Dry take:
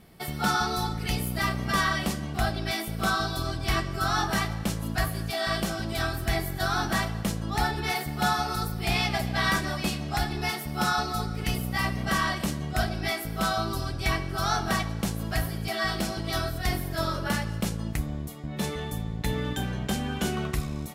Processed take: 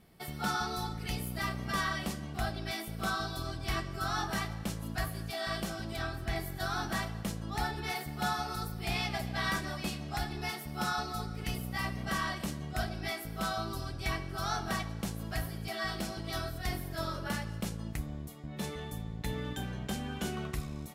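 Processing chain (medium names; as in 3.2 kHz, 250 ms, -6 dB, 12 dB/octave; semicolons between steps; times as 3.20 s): 5.96–6.36 s: treble shelf 8.1 kHz -12 dB; trim -7.5 dB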